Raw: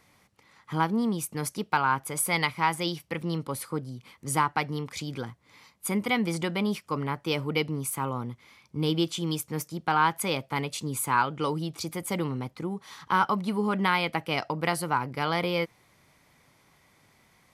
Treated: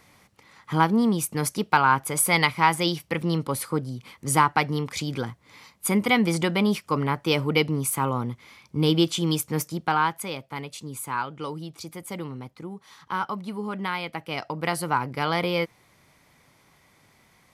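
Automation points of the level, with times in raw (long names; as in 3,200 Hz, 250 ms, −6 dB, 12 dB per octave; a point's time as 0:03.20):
0:09.70 +5.5 dB
0:10.31 −4.5 dB
0:14.12 −4.5 dB
0:14.89 +2.5 dB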